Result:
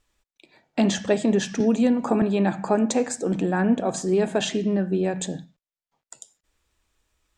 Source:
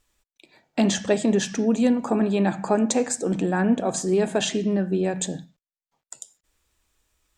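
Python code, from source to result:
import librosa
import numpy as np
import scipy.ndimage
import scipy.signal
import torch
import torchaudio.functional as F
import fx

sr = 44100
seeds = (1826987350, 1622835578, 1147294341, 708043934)

y = fx.high_shelf(x, sr, hz=7800.0, db=-8.5)
y = fx.band_squash(y, sr, depth_pct=70, at=(1.6, 2.22))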